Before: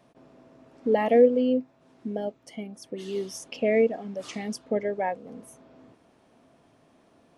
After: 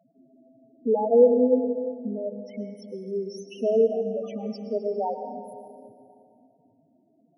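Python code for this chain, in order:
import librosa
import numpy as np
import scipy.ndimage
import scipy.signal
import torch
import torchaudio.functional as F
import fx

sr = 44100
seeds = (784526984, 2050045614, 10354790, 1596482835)

y = fx.spec_topn(x, sr, count=4)
y = fx.rev_plate(y, sr, seeds[0], rt60_s=2.4, hf_ratio=0.7, predelay_ms=95, drr_db=6.5)
y = y * 10.0 ** (1.5 / 20.0)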